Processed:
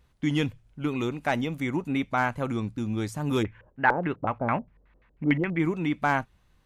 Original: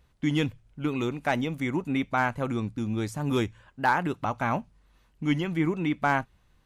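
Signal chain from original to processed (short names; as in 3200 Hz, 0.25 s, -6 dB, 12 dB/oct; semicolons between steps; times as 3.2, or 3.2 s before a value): wow and flutter 25 cents; 3.42–5.58 LFO low-pass square 2.9 Hz -> 8.5 Hz 520–2100 Hz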